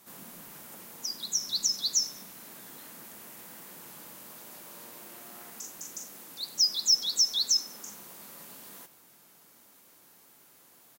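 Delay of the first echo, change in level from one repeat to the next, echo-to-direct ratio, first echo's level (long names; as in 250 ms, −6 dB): 96 ms, −6.0 dB, −22.0 dB, −23.0 dB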